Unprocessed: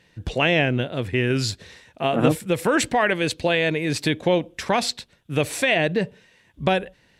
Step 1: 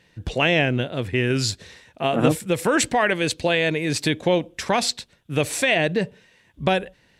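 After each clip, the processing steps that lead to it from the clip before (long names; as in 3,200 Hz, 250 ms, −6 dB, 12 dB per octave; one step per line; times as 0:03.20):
dynamic equaliser 7,300 Hz, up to +4 dB, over −43 dBFS, Q 0.91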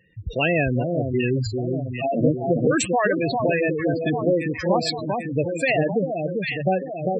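delay that swaps between a low-pass and a high-pass 397 ms, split 1,300 Hz, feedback 77%, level −3.5 dB
gate on every frequency bin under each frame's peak −10 dB strong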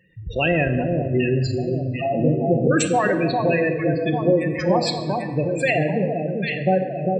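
rectangular room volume 1,700 cubic metres, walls mixed, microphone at 0.94 metres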